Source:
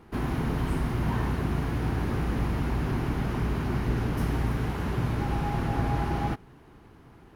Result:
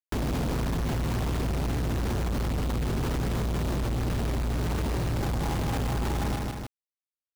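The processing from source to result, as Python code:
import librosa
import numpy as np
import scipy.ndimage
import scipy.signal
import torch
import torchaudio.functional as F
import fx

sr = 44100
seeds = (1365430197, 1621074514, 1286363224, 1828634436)

p1 = scipy.signal.sosfilt(scipy.signal.bessel(2, 850.0, 'lowpass', norm='mag', fs=sr, output='sos'), x)
p2 = fx.low_shelf(p1, sr, hz=90.0, db=5.0)
p3 = fx.quant_companded(p2, sr, bits=2)
p4 = p3 + fx.echo_feedback(p3, sr, ms=154, feedback_pct=17, wet_db=-10.0, dry=0)
p5 = fx.env_flatten(p4, sr, amount_pct=70)
y = p5 * 10.0 ** (-4.0 / 20.0)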